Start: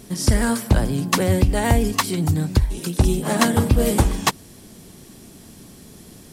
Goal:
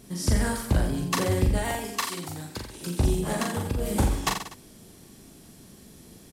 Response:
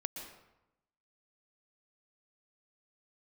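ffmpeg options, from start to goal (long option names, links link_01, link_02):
-filter_complex "[0:a]asettb=1/sr,asplit=3[link_01][link_02][link_03];[link_01]atrim=end=1.584[link_04];[link_02]atrim=start=1.58:end=2.81,asetpts=PTS-STARTPTS,afade=type=in:duration=0.004:curve=qsin,afade=type=out:start_time=1.226:duration=0.004:curve=qsin,highpass=frequency=630:poles=1[link_05];[link_03]atrim=start=2.806[link_06];[link_04][link_05]acrossfade=duration=0.004:curve1=hsin:curve2=qsin[link_07];[link_07][link_06]acrossfade=duration=0.004:curve1=qsin:curve2=hsin,asettb=1/sr,asplit=3[link_08][link_09][link_10];[link_08]atrim=end=3.324[link_11];[link_09]atrim=start=3.32:end=3.96,asetpts=PTS-STARTPTS,afade=type=in:duration=0.004:curve=qsin,afade=type=out:start_time=0.636:duration=0.004:curve=qsin,acompressor=threshold=-18dB:ratio=6[link_12];[link_10]atrim=start=3.956[link_13];[link_11][link_12]acrossfade=duration=0.004:curve1=hsin:curve2=qsin[link_14];[link_14][link_13]acrossfade=duration=0.004:curve1=qsin:curve2=hsin,aecho=1:1:40|84|132.4|185.6|244.2:0.631|0.398|0.251|0.158|0.1,volume=-8dB"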